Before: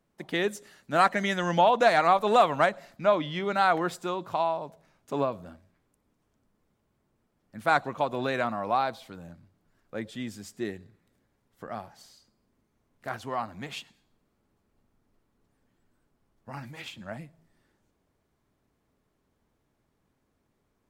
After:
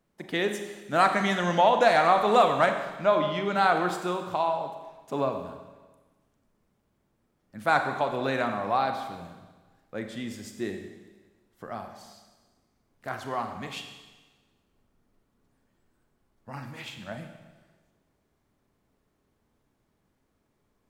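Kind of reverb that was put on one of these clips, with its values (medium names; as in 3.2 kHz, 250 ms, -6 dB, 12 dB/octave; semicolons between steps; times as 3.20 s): Schroeder reverb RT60 1.3 s, combs from 30 ms, DRR 5.5 dB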